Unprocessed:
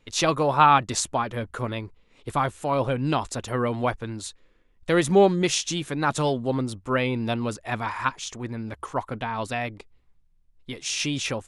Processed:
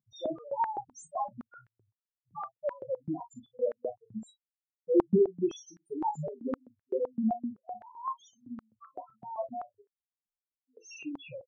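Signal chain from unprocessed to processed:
spectral peaks only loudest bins 1
ambience of single reflections 32 ms −10 dB, 50 ms −16 dB
high-pass on a step sequencer 7.8 Hz 210–1,700 Hz
level −4 dB

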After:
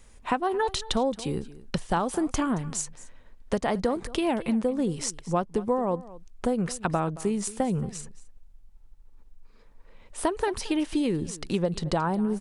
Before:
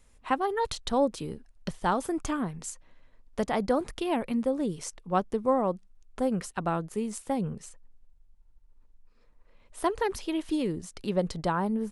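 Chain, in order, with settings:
downward compressor 5 to 1, threshold −30 dBFS, peak gain reduction 10.5 dB
on a send: single-tap delay 214 ms −18.5 dB
on the sum: wrong playback speed 25 fps video run at 24 fps
level +7.5 dB

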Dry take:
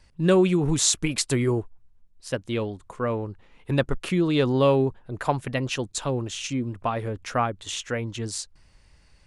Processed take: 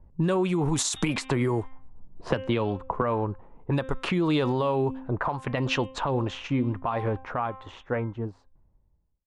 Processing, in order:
fade-out on the ending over 2.19 s
hum removal 263.1 Hz, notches 14
low-pass that shuts in the quiet parts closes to 370 Hz, open at −20.5 dBFS
parametric band 940 Hz +9 dB 0.94 octaves
downward compressor 6 to 1, threshold −26 dBFS, peak gain reduction 14.5 dB
brickwall limiter −22.5 dBFS, peak gain reduction 9.5 dB
0:00.96–0:03.02: multiband upward and downward compressor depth 100%
level +5.5 dB

